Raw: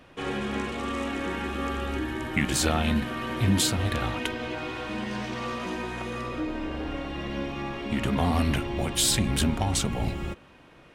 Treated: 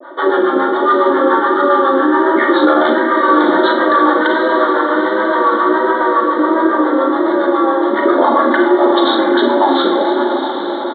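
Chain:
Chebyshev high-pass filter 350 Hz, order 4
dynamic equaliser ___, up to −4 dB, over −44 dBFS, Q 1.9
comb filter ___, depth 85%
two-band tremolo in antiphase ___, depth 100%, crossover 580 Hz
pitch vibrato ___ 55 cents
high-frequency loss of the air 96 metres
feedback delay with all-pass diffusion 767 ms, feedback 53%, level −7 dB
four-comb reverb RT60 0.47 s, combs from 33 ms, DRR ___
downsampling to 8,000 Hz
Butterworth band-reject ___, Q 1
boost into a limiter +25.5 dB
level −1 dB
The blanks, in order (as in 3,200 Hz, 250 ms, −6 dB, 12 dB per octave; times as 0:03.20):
730 Hz, 3.4 ms, 7.2 Hz, 1.4 Hz, 3 dB, 2,600 Hz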